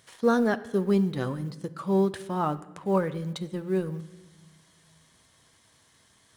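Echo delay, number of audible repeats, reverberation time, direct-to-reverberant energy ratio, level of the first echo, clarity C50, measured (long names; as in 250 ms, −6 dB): no echo audible, no echo audible, 1.2 s, 10.5 dB, no echo audible, 16.0 dB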